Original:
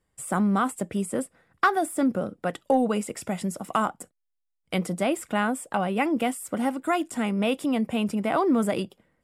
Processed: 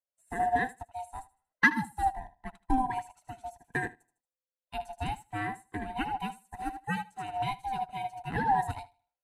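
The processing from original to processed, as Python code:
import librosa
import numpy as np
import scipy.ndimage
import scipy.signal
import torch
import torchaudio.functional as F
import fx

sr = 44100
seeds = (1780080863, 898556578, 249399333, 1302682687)

y = fx.band_swap(x, sr, width_hz=500)
y = fx.echo_feedback(y, sr, ms=77, feedback_pct=37, wet_db=-8)
y = fx.upward_expand(y, sr, threshold_db=-37.0, expansion=2.5)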